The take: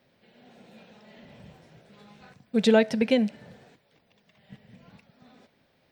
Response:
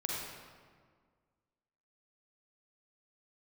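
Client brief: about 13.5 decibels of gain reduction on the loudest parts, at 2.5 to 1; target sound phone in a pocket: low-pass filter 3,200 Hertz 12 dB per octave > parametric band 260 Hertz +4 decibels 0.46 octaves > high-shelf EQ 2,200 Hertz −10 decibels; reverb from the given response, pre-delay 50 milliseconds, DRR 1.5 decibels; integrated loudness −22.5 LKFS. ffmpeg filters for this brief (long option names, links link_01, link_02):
-filter_complex "[0:a]acompressor=threshold=-36dB:ratio=2.5,asplit=2[link_01][link_02];[1:a]atrim=start_sample=2205,adelay=50[link_03];[link_02][link_03]afir=irnorm=-1:irlink=0,volume=-5.5dB[link_04];[link_01][link_04]amix=inputs=2:normalize=0,lowpass=3200,equalizer=frequency=260:width_type=o:width=0.46:gain=4,highshelf=frequency=2200:gain=-10,volume=12.5dB"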